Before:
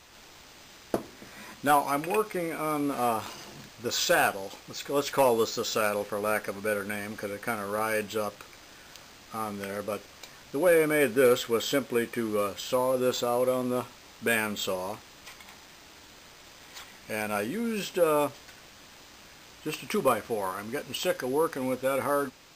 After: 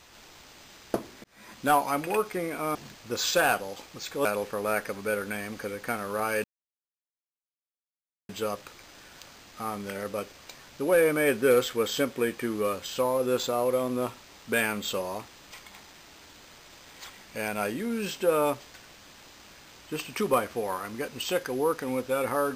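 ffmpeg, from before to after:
ffmpeg -i in.wav -filter_complex "[0:a]asplit=5[link_01][link_02][link_03][link_04][link_05];[link_01]atrim=end=1.24,asetpts=PTS-STARTPTS,afade=type=out:start_time=1.236:duration=0.004:curve=hsin[link_06];[link_02]atrim=start=1.24:end=2.752,asetpts=PTS-STARTPTS,afade=type=in:duration=0.35[link_07];[link_03]atrim=start=3.488:end=4.992[link_08];[link_04]atrim=start=5.838:end=8.03,asetpts=PTS-STARTPTS,afade=type=out:start_time=2.188:duration=0.004:curve=hsin,apad=pad_dur=1.85[link_09];[link_05]atrim=start=8.03,asetpts=PTS-STARTPTS,afade=type=in:duration=0.004:curve=hsin[link_10];[link_06][link_07]concat=n=2:v=0:a=1[link_11];[link_11][link_08]acrossfade=duration=0.004:curve1=hsin:curve2=hsin[link_12];[link_09][link_10]concat=n=2:v=0:a=1[link_13];[link_12][link_13]acrossfade=duration=0.004:curve1=hsin:curve2=hsin" out.wav

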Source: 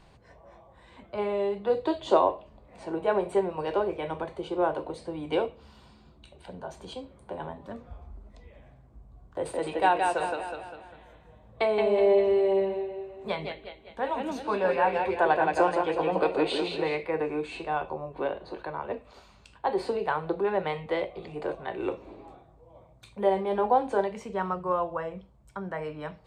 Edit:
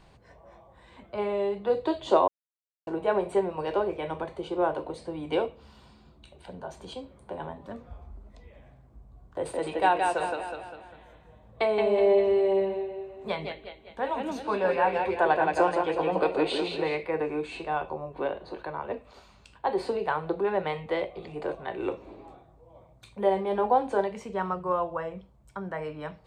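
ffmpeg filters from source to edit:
ffmpeg -i in.wav -filter_complex "[0:a]asplit=3[link_01][link_02][link_03];[link_01]atrim=end=2.28,asetpts=PTS-STARTPTS,afade=type=out:start_time=2.276:duration=0.004:curve=hsin[link_04];[link_02]atrim=start=2.28:end=2.87,asetpts=PTS-STARTPTS,volume=0[link_05];[link_03]atrim=start=2.87,asetpts=PTS-STARTPTS,afade=type=in:duration=0.004:curve=hsin[link_06];[link_04][link_05][link_06]concat=n=3:v=0:a=1" out.wav

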